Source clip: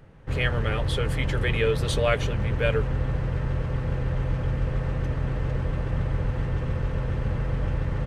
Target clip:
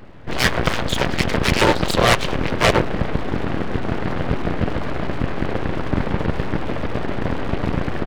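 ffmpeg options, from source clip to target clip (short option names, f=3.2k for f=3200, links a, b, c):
-af "aresample=11025,aresample=44100,aeval=exprs='abs(val(0))':c=same,aeval=exprs='0.316*(cos(1*acos(clip(val(0)/0.316,-1,1)))-cos(1*PI/2))+0.126*(cos(7*acos(clip(val(0)/0.316,-1,1)))-cos(7*PI/2))':c=same,volume=6dB"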